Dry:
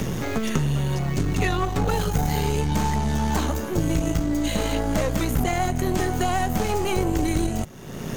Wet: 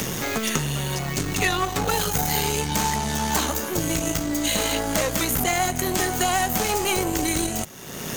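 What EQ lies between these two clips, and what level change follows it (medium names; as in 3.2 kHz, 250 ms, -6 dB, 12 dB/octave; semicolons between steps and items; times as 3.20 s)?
tilt EQ +2.5 dB/octave; +2.5 dB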